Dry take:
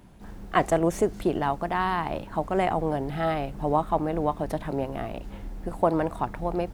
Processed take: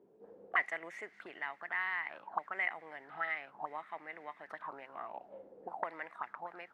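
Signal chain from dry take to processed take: Bessel high-pass 160 Hz, order 2; auto-wah 410–2000 Hz, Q 9.1, up, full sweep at -24 dBFS; trim +6 dB

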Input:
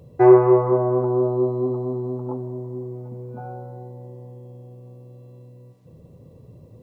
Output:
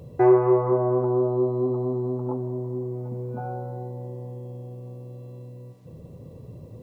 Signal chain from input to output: compression 1.5:1, threshold -34 dBFS, peak gain reduction 10 dB; trim +4 dB

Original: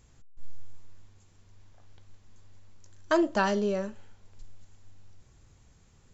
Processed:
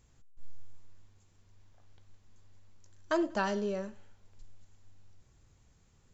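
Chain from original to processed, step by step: thinning echo 95 ms, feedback 37%, level -20 dB; trim -5.5 dB

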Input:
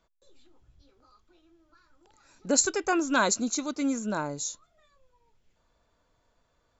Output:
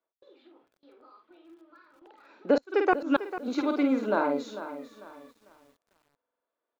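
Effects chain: high-pass 310 Hz 24 dB/octave; doubling 49 ms -5 dB; gate with hold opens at -58 dBFS; in parallel at +0.5 dB: compression, threshold -31 dBFS, peak gain reduction 13.5 dB; on the sum: inverted gate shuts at -11 dBFS, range -31 dB; low-pass 3.6 kHz 24 dB/octave; tilt EQ -2 dB/octave; buffer glitch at 4.89/6.03 s, samples 2048, times 8; bit-crushed delay 447 ms, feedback 35%, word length 9-bit, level -12.5 dB

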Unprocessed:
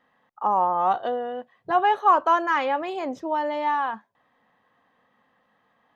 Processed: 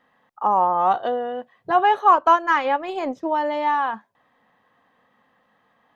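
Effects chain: 2.11–3.30 s: transient shaper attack +4 dB, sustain -8 dB; trim +3 dB

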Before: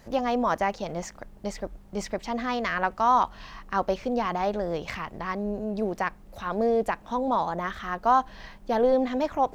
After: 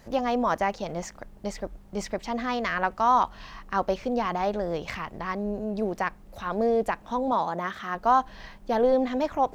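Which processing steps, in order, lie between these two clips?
7.32–7.95 s: high-pass 130 Hz 12 dB/octave

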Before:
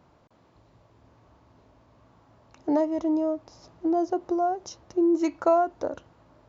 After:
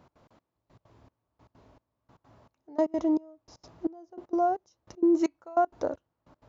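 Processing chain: trance gate "x.xxx...." 194 bpm -24 dB

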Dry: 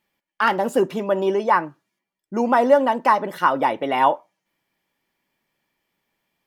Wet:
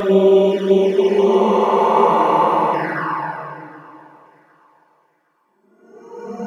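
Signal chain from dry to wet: Paulstretch 5.8×, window 0.50 s, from 1.15 s; touch-sensitive flanger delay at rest 3 ms, full sweep at -16.5 dBFS; vibrato 7.1 Hz 6.7 cents; on a send: thinning echo 763 ms, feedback 27%, high-pass 150 Hz, level -20.5 dB; on the sum: trim +7.5 dB

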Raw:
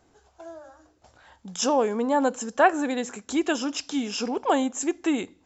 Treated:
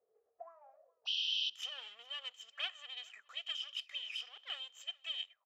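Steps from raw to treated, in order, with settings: comb filter that takes the minimum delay 1.6 ms; peaking EQ 3.7 kHz -12.5 dB 0.58 oct, from 1.63 s 270 Hz; 1.05–1.50 s: painted sound noise 2.5–6 kHz -30 dBFS; auto-wah 430–3100 Hz, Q 16, up, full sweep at -30.5 dBFS; bass shelf 380 Hz -11 dB; delay 421 ms -24 dB; trim +6 dB

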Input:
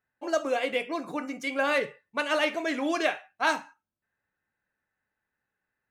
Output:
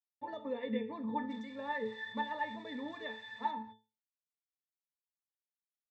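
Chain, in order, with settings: 1.30–3.51 s: zero-crossing glitches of -18 dBFS; graphic EQ with 31 bands 100 Hz -4 dB, 400 Hz -11 dB, 8 kHz +11 dB; compression 6:1, threshold -27 dBFS, peak gain reduction 8.5 dB; bit crusher 9-bit; distance through air 200 m; pitch-class resonator A, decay 0.29 s; trim +17 dB

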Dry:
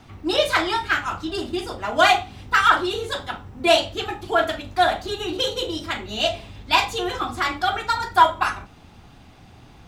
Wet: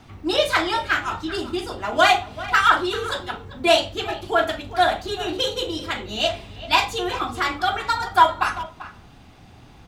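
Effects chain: speakerphone echo 390 ms, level -15 dB

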